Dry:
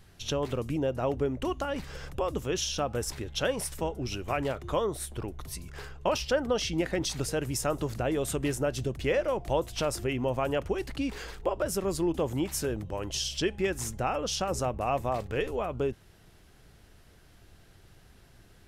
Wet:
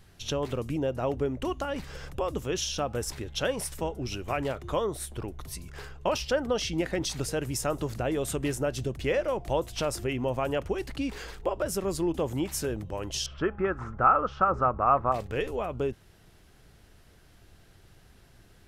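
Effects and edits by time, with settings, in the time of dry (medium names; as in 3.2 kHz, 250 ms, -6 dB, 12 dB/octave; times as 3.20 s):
13.26–15.12 s: resonant low-pass 1.3 kHz, resonance Q 7.3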